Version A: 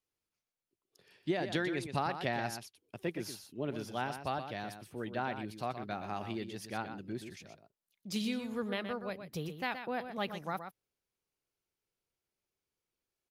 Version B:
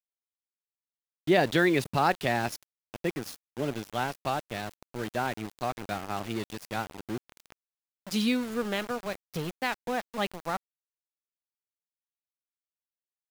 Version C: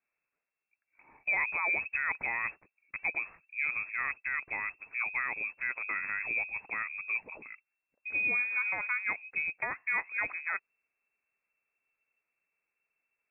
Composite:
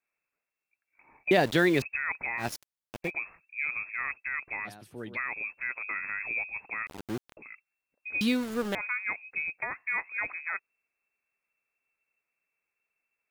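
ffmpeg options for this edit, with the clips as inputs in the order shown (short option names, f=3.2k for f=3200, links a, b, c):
-filter_complex "[1:a]asplit=4[a][b][c][d];[2:a]asplit=6[e][f][g][h][i][j];[e]atrim=end=1.312[k];[a]atrim=start=1.308:end=1.822[l];[f]atrim=start=1.818:end=2.47[m];[b]atrim=start=2.37:end=3.12[n];[g]atrim=start=3.02:end=4.68[o];[0:a]atrim=start=4.64:end=5.18[p];[h]atrim=start=5.14:end=6.872[q];[c]atrim=start=6.868:end=7.372[r];[i]atrim=start=7.368:end=8.212[s];[d]atrim=start=8.208:end=8.752[t];[j]atrim=start=8.748[u];[k][l]acrossfade=d=0.004:c1=hsin:c2=hsin[v];[v][m]acrossfade=d=0.004:c1=hsin:c2=hsin[w];[w][n]acrossfade=d=0.1:c1=tri:c2=tri[x];[x][o]acrossfade=d=0.1:c1=tri:c2=tri[y];[y][p]acrossfade=d=0.04:c1=tri:c2=tri[z];[z][q]acrossfade=d=0.04:c1=tri:c2=tri[aa];[aa][r]acrossfade=d=0.004:c1=hsin:c2=hsin[ab];[ab][s]acrossfade=d=0.004:c1=hsin:c2=hsin[ac];[ac][t]acrossfade=d=0.004:c1=hsin:c2=hsin[ad];[ad][u]acrossfade=d=0.004:c1=hsin:c2=hsin"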